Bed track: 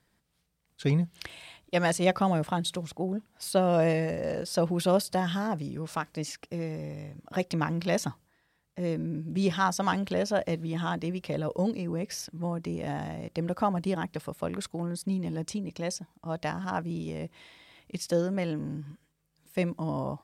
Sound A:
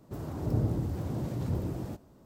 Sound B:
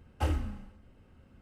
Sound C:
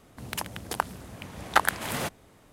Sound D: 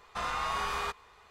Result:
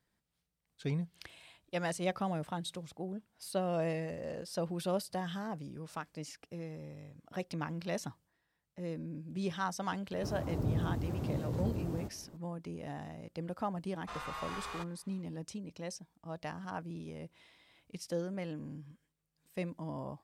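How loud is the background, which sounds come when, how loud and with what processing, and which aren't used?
bed track -9.5 dB
10.12 add A -3.5 dB + three-band squash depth 40%
13.92 add D -9.5 dB
not used: B, C

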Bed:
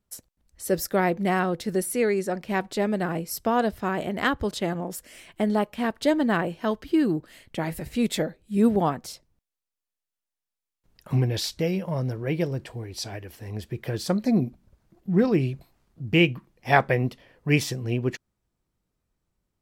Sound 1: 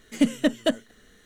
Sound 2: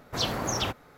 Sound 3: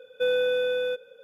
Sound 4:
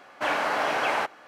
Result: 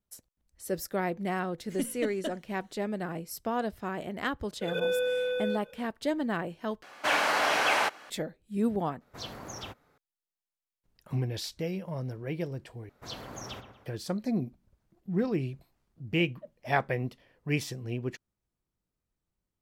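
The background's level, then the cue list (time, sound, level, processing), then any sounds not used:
bed -8 dB
1.58 add 1 -13 dB
4.61 add 3 -4.5 dB + backwards sustainer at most 51 dB/s
6.83 replace with 4 -2.5 dB + high shelf 2400 Hz +10 dB
9.01 replace with 2 -12.5 dB
12.89 replace with 2 -13 dB + dark delay 0.118 s, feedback 42%, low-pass 2200 Hz, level -8 dB
15.98 add 1 -18 dB + double band-pass 310 Hz, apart 1.8 oct

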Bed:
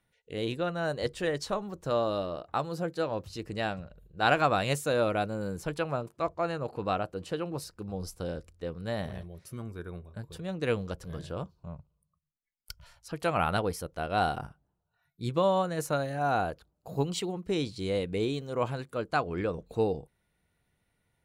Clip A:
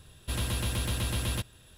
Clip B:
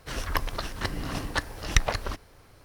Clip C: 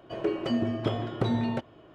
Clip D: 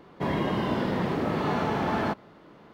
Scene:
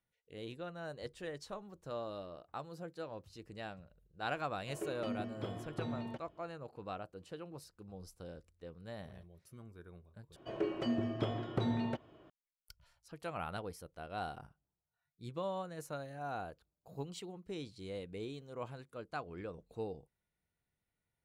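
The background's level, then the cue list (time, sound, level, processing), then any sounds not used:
bed -13.5 dB
4.57 add C -13.5 dB
10.36 replace with C -7 dB
not used: A, B, D

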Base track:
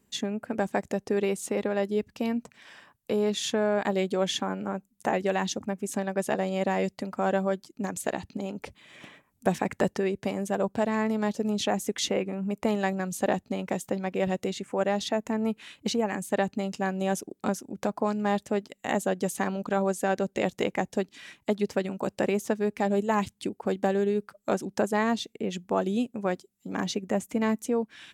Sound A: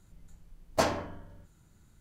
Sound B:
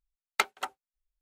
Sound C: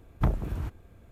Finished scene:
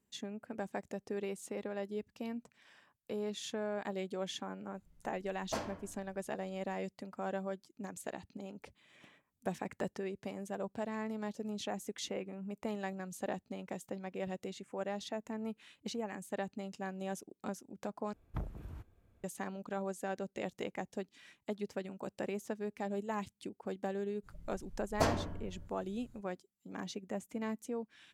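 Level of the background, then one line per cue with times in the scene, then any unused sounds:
base track -12.5 dB
4.74 add A -12 dB
18.13 replace with C -14.5 dB
24.22 add A -6 dB, fades 0.05 s + low shelf 290 Hz +9 dB
not used: B

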